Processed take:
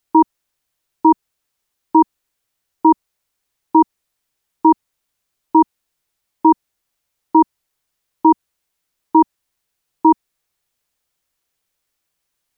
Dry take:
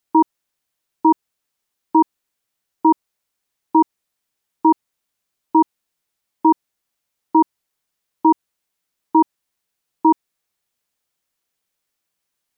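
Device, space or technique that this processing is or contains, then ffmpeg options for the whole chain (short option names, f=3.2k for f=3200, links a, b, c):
low shelf boost with a cut just above: -af "lowshelf=f=91:g=7.5,equalizer=f=210:t=o:w=0.54:g=-3.5,volume=2.5dB"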